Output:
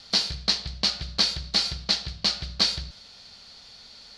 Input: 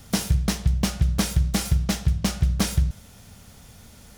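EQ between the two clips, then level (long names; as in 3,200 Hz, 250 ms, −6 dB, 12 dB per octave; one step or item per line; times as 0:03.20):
low-pass with resonance 4,400 Hz, resonance Q 8.8
parametric band 110 Hz −7.5 dB 2.8 octaves
low-shelf EQ 260 Hz −9 dB
−1.5 dB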